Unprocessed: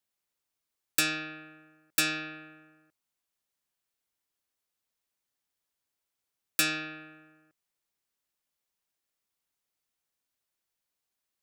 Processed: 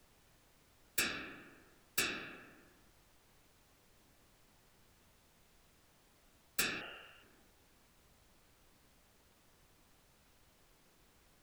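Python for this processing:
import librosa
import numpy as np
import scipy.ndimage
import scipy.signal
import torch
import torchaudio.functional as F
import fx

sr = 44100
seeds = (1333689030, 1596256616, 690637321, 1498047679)

y = fx.whisperise(x, sr, seeds[0])
y = fx.freq_invert(y, sr, carrier_hz=3100, at=(6.81, 7.23))
y = fx.dmg_noise_colour(y, sr, seeds[1], colour='pink', level_db=-59.0)
y = F.gain(torch.from_numpy(y), -8.5).numpy()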